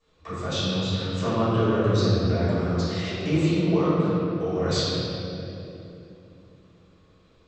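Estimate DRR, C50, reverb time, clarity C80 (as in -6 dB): -16.5 dB, -5.0 dB, 2.9 s, -2.5 dB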